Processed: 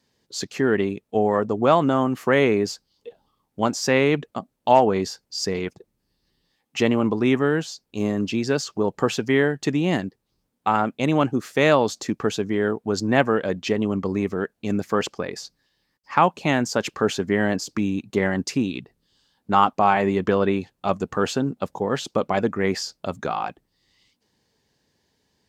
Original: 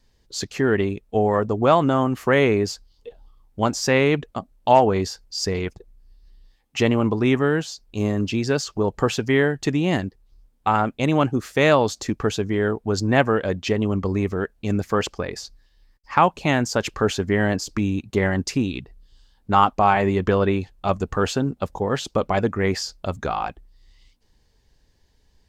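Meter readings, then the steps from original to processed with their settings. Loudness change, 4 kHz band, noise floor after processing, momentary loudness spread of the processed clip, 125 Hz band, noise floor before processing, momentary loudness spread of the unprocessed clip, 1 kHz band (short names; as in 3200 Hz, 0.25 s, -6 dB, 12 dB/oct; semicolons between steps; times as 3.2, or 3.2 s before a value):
-1.0 dB, -1.0 dB, -75 dBFS, 10 LU, -4.0 dB, -63 dBFS, 10 LU, -1.0 dB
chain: Chebyshev high-pass 170 Hz, order 2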